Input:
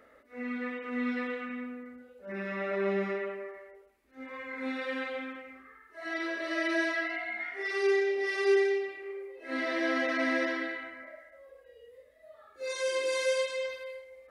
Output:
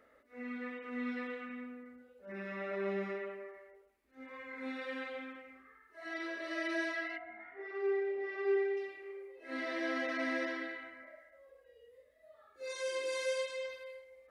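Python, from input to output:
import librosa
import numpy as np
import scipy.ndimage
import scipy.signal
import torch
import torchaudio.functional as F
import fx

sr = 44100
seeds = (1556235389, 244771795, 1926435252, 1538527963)

y = fx.lowpass(x, sr, hz=fx.line((7.17, 1100.0), (8.76, 2000.0)), slope=12, at=(7.17, 8.76), fade=0.02)
y = y * librosa.db_to_amplitude(-6.5)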